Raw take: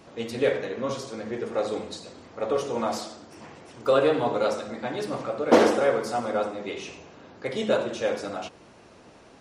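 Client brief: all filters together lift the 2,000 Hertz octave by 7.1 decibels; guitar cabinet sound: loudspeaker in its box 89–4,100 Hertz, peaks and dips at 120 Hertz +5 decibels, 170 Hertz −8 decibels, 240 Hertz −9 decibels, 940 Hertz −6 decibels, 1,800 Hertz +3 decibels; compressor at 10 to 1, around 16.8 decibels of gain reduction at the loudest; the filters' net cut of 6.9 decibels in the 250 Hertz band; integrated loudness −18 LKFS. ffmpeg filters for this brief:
ffmpeg -i in.wav -af "equalizer=frequency=250:width_type=o:gain=-4.5,equalizer=frequency=2000:width_type=o:gain=7.5,acompressor=threshold=-29dB:ratio=10,highpass=89,equalizer=frequency=120:width_type=q:width=4:gain=5,equalizer=frequency=170:width_type=q:width=4:gain=-8,equalizer=frequency=240:width_type=q:width=4:gain=-9,equalizer=frequency=940:width_type=q:width=4:gain=-6,equalizer=frequency=1800:width_type=q:width=4:gain=3,lowpass=frequency=4100:width=0.5412,lowpass=frequency=4100:width=1.3066,volume=17.5dB" out.wav

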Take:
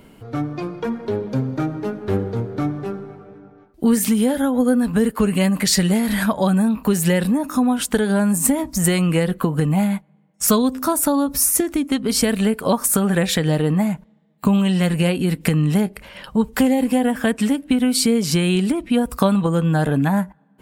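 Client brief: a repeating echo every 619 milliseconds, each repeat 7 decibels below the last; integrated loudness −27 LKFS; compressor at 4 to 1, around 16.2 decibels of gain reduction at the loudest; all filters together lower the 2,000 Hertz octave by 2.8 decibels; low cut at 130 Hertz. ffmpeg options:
ffmpeg -i in.wav -af "highpass=130,equalizer=frequency=2000:width_type=o:gain=-3.5,acompressor=threshold=-34dB:ratio=4,aecho=1:1:619|1238|1857|2476|3095:0.447|0.201|0.0905|0.0407|0.0183,volume=6.5dB" out.wav

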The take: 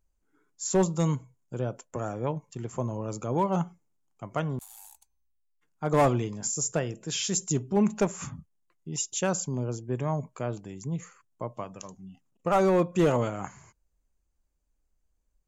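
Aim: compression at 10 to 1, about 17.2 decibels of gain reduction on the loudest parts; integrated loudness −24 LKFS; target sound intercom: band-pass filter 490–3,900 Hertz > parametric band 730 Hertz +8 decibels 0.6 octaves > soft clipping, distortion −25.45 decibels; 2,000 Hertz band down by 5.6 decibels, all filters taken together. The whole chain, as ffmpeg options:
ffmpeg -i in.wav -af "equalizer=frequency=2000:width_type=o:gain=-8,acompressor=threshold=-37dB:ratio=10,highpass=490,lowpass=3900,equalizer=frequency=730:width_type=o:width=0.6:gain=8,asoftclip=threshold=-26dB,volume=22dB" out.wav

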